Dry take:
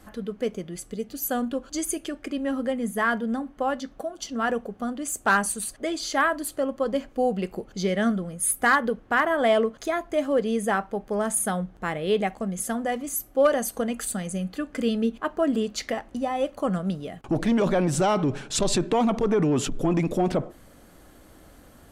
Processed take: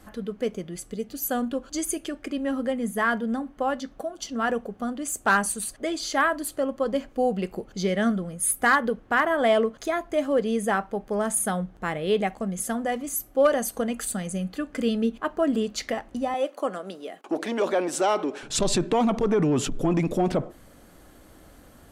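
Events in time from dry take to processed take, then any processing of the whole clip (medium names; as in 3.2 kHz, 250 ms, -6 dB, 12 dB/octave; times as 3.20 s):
16.34–18.43 s: high-pass 300 Hz 24 dB/octave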